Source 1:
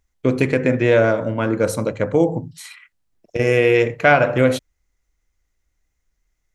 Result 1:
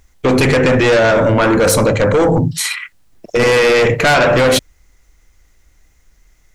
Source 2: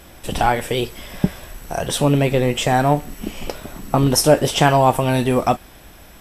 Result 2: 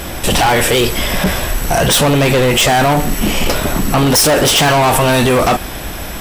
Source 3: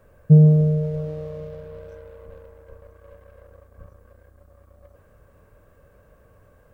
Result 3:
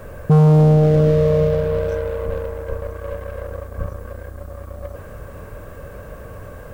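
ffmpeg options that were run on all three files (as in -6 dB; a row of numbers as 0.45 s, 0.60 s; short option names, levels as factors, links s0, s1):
-af "asoftclip=type=tanh:threshold=0.335,apsyclip=23.7,volume=0.376"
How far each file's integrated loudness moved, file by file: +5.5 LU, +6.0 LU, +0.5 LU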